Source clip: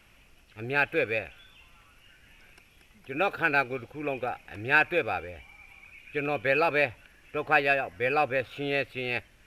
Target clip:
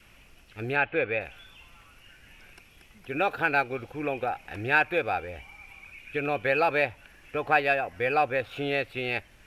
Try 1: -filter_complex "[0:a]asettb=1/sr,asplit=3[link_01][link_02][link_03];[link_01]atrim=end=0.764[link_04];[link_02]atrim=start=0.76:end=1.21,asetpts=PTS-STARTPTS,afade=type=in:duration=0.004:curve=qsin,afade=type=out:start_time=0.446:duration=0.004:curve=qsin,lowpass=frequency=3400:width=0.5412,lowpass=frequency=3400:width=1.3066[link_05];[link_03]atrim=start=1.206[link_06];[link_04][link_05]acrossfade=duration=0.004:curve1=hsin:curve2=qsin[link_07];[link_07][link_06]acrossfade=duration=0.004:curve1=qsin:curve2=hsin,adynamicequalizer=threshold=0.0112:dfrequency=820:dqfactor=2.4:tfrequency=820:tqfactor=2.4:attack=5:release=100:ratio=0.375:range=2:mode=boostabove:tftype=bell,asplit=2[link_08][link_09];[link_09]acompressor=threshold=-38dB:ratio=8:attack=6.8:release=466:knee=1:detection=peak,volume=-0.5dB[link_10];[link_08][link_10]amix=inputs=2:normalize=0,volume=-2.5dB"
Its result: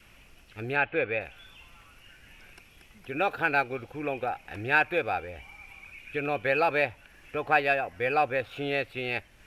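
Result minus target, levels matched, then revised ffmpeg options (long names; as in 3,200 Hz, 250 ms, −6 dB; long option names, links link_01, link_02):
downward compressor: peak gain reduction +5.5 dB
-filter_complex "[0:a]asettb=1/sr,asplit=3[link_01][link_02][link_03];[link_01]atrim=end=0.764[link_04];[link_02]atrim=start=0.76:end=1.21,asetpts=PTS-STARTPTS,afade=type=in:duration=0.004:curve=qsin,afade=type=out:start_time=0.446:duration=0.004:curve=qsin,lowpass=frequency=3400:width=0.5412,lowpass=frequency=3400:width=1.3066[link_05];[link_03]atrim=start=1.206[link_06];[link_04][link_05]acrossfade=duration=0.004:curve1=hsin:curve2=qsin[link_07];[link_07][link_06]acrossfade=duration=0.004:curve1=qsin:curve2=hsin,adynamicequalizer=threshold=0.0112:dfrequency=820:dqfactor=2.4:tfrequency=820:tqfactor=2.4:attack=5:release=100:ratio=0.375:range=2:mode=boostabove:tftype=bell,asplit=2[link_08][link_09];[link_09]acompressor=threshold=-31.5dB:ratio=8:attack=6.8:release=466:knee=1:detection=peak,volume=-0.5dB[link_10];[link_08][link_10]amix=inputs=2:normalize=0,volume=-2.5dB"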